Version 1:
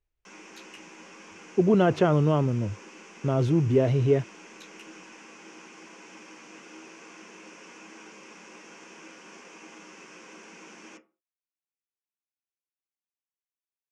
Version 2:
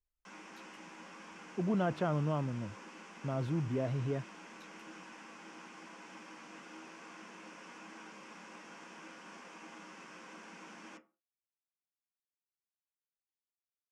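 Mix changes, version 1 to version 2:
speech -8.0 dB; master: add fifteen-band EQ 100 Hz -7 dB, 400 Hz -9 dB, 2500 Hz -6 dB, 6300 Hz -9 dB

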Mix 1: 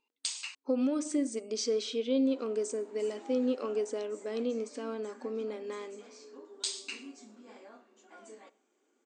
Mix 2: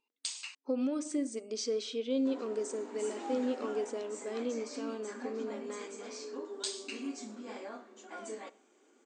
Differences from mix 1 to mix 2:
speech -3.0 dB; background +8.5 dB

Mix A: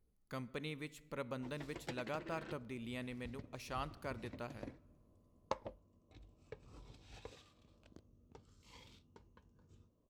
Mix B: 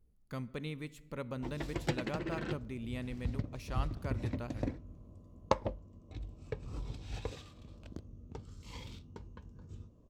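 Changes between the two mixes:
background +9.0 dB; master: add low shelf 240 Hz +9 dB

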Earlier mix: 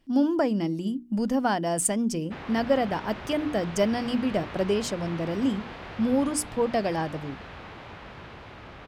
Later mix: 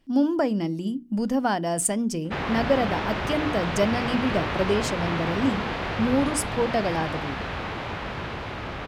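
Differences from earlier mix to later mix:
speech: send +9.5 dB; background +11.0 dB

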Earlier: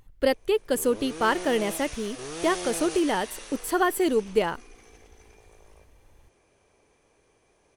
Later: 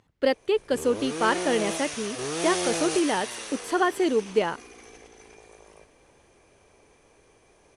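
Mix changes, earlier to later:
speech: add BPF 140–6600 Hz; background +6.0 dB

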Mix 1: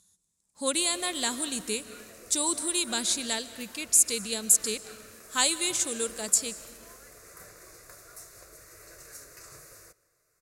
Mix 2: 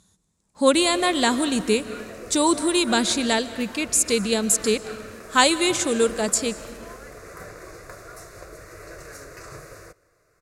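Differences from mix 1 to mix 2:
background: send -6.0 dB; master: remove pre-emphasis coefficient 0.8

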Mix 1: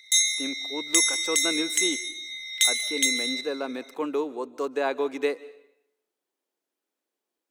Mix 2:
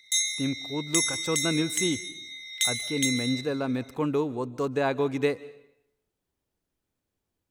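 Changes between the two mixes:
speech: remove HPF 300 Hz 24 dB/oct; background -4.5 dB

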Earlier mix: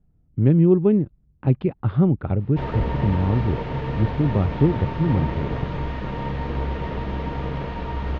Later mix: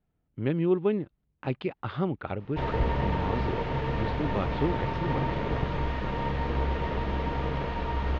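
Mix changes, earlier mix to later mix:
speech: add tilt +3.5 dB/oct; master: add bell 150 Hz -4.5 dB 2.3 oct

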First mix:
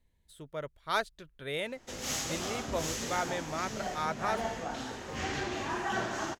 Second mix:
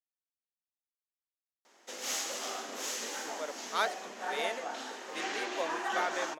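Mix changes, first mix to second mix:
speech: entry +2.85 s; master: add Bessel high-pass 420 Hz, order 6

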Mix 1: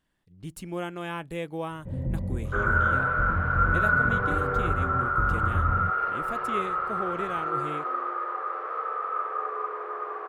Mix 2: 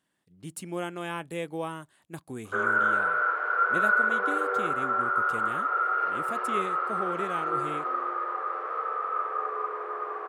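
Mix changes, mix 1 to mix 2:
speech: add HPF 160 Hz 12 dB/oct; first sound: muted; master: add bell 8800 Hz +6.5 dB 0.74 oct

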